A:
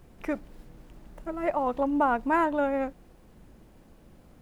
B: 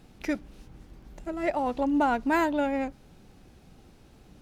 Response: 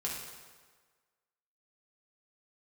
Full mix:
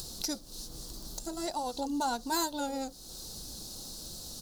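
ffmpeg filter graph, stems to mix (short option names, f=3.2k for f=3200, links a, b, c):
-filter_complex "[0:a]flanger=delay=1.7:depth=7.1:regen=-62:speed=1.2:shape=sinusoidal,volume=-4dB[a];[1:a]highpass=1.3k,adelay=1.1,volume=-0.5dB[b];[a][b]amix=inputs=2:normalize=0,firequalizer=gain_entry='entry(500,0);entry(1100,-4);entry(2200,-19);entry(4100,14)':delay=0.05:min_phase=1,acompressor=mode=upward:threshold=-31dB:ratio=2.5"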